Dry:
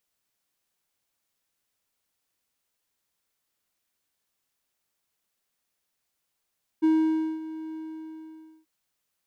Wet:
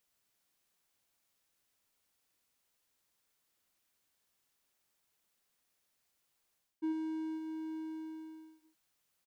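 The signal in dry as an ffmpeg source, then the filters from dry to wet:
-f lavfi -i "aevalsrc='0.178*(1-4*abs(mod(317*t+0.25,1)-0.5))':d=1.836:s=44100,afade=t=in:d=0.021,afade=t=out:st=0.021:d=0.553:silence=0.15,afade=t=out:st=0.92:d=0.916"
-af "areverse,acompressor=threshold=-34dB:ratio=5,areverse,aecho=1:1:93:0.316"

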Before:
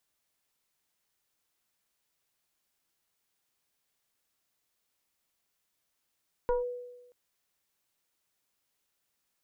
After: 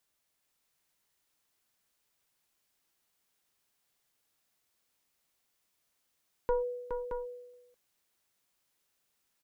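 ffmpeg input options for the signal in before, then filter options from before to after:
-f lavfi -i "aevalsrc='0.075*pow(10,-3*t/1.08)*sin(2*PI*491*t+0.94*clip(1-t/0.15,0,1)*sin(2*PI*0.96*491*t))':d=0.63:s=44100"
-af "aecho=1:1:417|622:0.473|0.473"

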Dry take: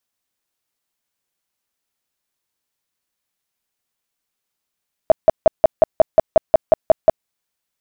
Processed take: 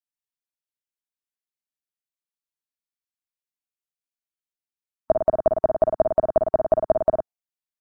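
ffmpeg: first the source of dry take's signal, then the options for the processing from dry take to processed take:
-f lavfi -i "aevalsrc='0.596*sin(2*PI*640*mod(t,0.18))*lt(mod(t,0.18),11/640)':d=2.16:s=44100"
-filter_complex "[0:a]afftdn=nr=19:nf=-34,equalizer=f=125:t=o:w=1:g=-4,equalizer=f=500:t=o:w=1:g=-5,equalizer=f=1k:t=o:w=1:g=-4,asplit=2[a][b];[b]aecho=0:1:49|57|106:0.2|0.422|0.398[c];[a][c]amix=inputs=2:normalize=0"

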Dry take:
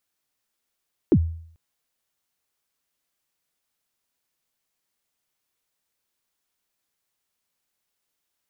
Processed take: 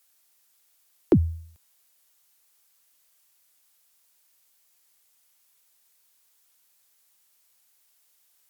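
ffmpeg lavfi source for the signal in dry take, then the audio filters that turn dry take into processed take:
-f lavfi -i "aevalsrc='0.316*pow(10,-3*t/0.6)*sin(2*PI*(410*0.062/log(82/410)*(exp(log(82/410)*min(t,0.062)/0.062)-1)+82*max(t-0.062,0)))':d=0.44:s=44100"
-filter_complex "[0:a]aemphasis=mode=production:type=cd,acrossover=split=220|490[a][b][c];[c]acontrast=87[d];[a][b][d]amix=inputs=3:normalize=0"

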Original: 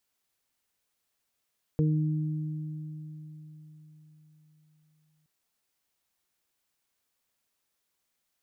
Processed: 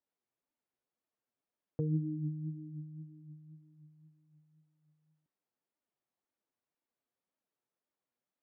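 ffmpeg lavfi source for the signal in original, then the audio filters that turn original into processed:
-f lavfi -i "aevalsrc='0.0841*pow(10,-3*t/4.36)*sin(2*PI*154*t)+0.0355*pow(10,-3*t/3.09)*sin(2*PI*308*t)+0.0355*pow(10,-3*t/0.38)*sin(2*PI*462*t)':d=3.47:s=44100"
-af "bandpass=f=350:t=q:w=0.55:csg=0,flanger=delay=3.2:depth=5.2:regen=27:speed=1.9:shape=sinusoidal"

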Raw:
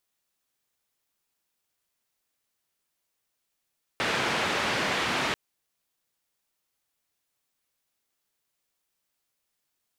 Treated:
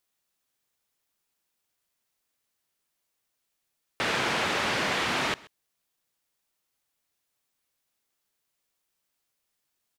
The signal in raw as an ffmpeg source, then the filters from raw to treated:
-f lavfi -i "anoisesrc=c=white:d=1.34:r=44100:seed=1,highpass=f=110,lowpass=f=2500,volume=-13.5dB"
-af "aecho=1:1:131:0.075"

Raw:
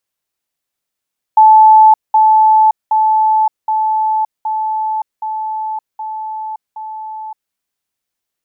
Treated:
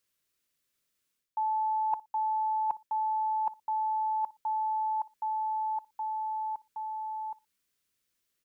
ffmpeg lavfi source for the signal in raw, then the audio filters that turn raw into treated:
-f lavfi -i "aevalsrc='pow(10,(-2.5-3*floor(t/0.77))/20)*sin(2*PI*870*t)*clip(min(mod(t,0.77),0.57-mod(t,0.77))/0.005,0,1)':d=6.16:s=44100"
-filter_complex "[0:a]equalizer=f=790:t=o:w=0.57:g=-12,asplit=2[a][b];[b]adelay=60,lowpass=f=940:p=1,volume=-20dB,asplit=2[c][d];[d]adelay=60,lowpass=f=940:p=1,volume=0.25[e];[a][c][e]amix=inputs=3:normalize=0,areverse,acompressor=threshold=-28dB:ratio=12,areverse"

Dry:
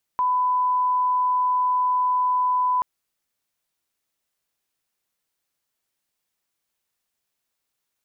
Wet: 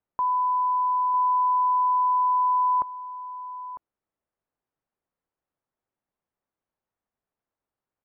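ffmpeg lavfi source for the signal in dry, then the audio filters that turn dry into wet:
-f lavfi -i "sine=f=1000:d=2.63:r=44100,volume=0.06dB"
-af "lowpass=1.1k,aecho=1:1:951:0.224"

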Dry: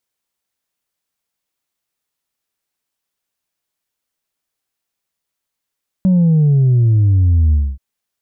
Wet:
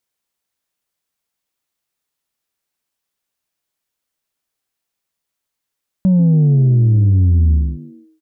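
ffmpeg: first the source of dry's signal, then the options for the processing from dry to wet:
-f lavfi -i "aevalsrc='0.355*clip((1.73-t)/0.25,0,1)*tanh(1.19*sin(2*PI*190*1.73/log(65/190)*(exp(log(65/190)*t/1.73)-1)))/tanh(1.19)':d=1.73:s=44100"
-filter_complex "[0:a]asplit=4[a][b][c][d];[b]adelay=140,afreqshift=83,volume=-17dB[e];[c]adelay=280,afreqshift=166,volume=-25dB[f];[d]adelay=420,afreqshift=249,volume=-32.9dB[g];[a][e][f][g]amix=inputs=4:normalize=0"

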